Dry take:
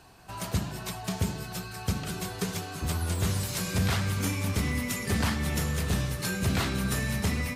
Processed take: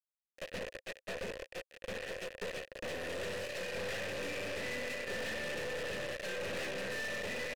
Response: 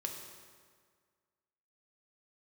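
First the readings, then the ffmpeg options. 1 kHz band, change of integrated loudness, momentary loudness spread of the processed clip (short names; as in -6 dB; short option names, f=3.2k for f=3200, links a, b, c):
-10.5 dB, -9.5 dB, 7 LU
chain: -filter_complex "[0:a]asplit=2[a][b];[b]aecho=0:1:625:0.15[c];[a][c]amix=inputs=2:normalize=0,acrusher=bits=4:mix=0:aa=0.000001,asplit=3[d][e][f];[d]bandpass=f=530:t=q:w=8,volume=0dB[g];[e]bandpass=f=1.84k:t=q:w=8,volume=-6dB[h];[f]bandpass=f=2.48k:t=q:w=8,volume=-9dB[i];[g][h][i]amix=inputs=3:normalize=0,aeval=exprs='(tanh(282*val(0)+0.45)-tanh(0.45))/282':c=same,volume=12.5dB"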